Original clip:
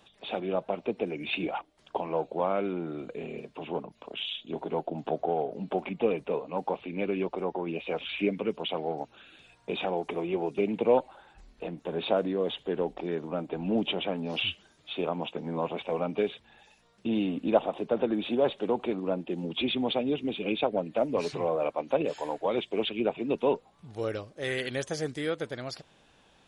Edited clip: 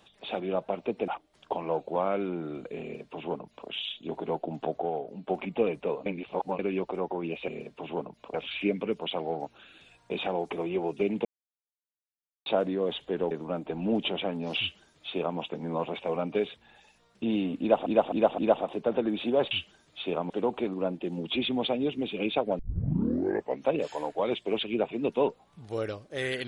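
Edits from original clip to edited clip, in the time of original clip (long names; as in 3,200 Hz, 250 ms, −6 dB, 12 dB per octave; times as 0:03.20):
0:01.08–0:01.52: remove
0:03.26–0:04.12: duplicate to 0:07.92
0:05.00–0:05.73: fade out, to −7 dB
0:06.50–0:07.03: reverse
0:10.83–0:12.04: silence
0:12.89–0:13.14: remove
0:14.42–0:15.21: duplicate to 0:18.56
0:17.43–0:17.69: repeat, 4 plays
0:20.85: tape start 1.09 s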